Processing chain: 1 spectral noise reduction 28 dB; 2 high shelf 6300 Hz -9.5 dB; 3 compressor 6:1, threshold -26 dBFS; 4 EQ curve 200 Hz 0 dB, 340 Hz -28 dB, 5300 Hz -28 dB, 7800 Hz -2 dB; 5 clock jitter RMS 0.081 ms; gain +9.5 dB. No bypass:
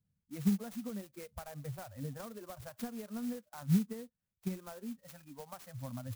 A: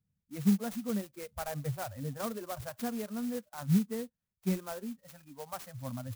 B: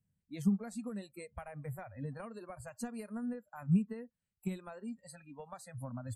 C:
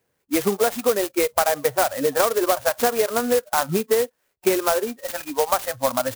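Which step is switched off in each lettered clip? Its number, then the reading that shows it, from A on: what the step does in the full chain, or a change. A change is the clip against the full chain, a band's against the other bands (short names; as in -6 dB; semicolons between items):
3, mean gain reduction 5.0 dB; 5, 8 kHz band -2.0 dB; 4, 125 Hz band -25.5 dB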